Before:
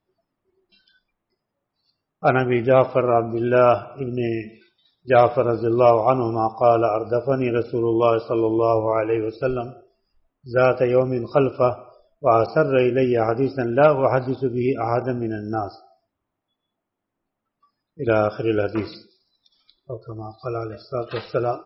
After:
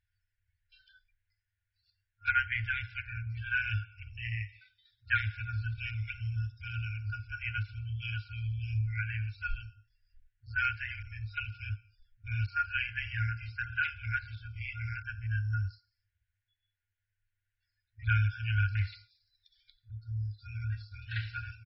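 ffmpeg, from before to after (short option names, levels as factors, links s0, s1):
-filter_complex "[0:a]asplit=2[s0][s1];[s1]afade=t=in:st=20.1:d=0.01,afade=t=out:st=20.97:d=0.01,aecho=0:1:530|1060|1590|2120|2650:0.421697|0.189763|0.0853935|0.0384271|0.0172922[s2];[s0][s2]amix=inputs=2:normalize=0,afftfilt=real='re*(1-between(b*sr/4096,110,1400))':imag='im*(1-between(b*sr/4096,110,1400))':win_size=4096:overlap=0.75,acrossover=split=4600[s3][s4];[s4]acompressor=threshold=0.00126:ratio=4:attack=1:release=60[s5];[s3][s5]amix=inputs=2:normalize=0,bass=f=250:g=5,treble=f=4000:g=-12"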